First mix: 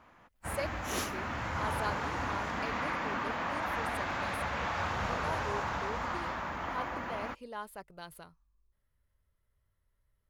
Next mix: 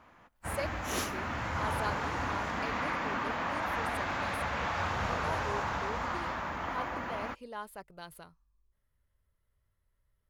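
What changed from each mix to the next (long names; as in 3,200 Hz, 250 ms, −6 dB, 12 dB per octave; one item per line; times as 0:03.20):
reverb: on, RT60 1.4 s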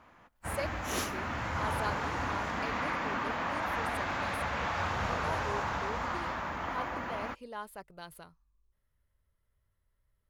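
nothing changed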